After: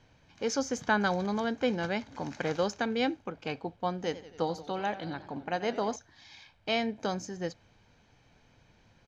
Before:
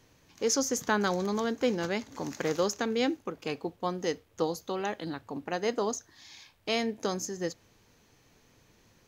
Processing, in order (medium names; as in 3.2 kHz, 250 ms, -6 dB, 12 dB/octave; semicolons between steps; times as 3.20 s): low-pass 4 kHz 12 dB/octave; comb 1.3 ms, depth 40%; 3.94–5.96 s: modulated delay 91 ms, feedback 63%, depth 117 cents, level -15 dB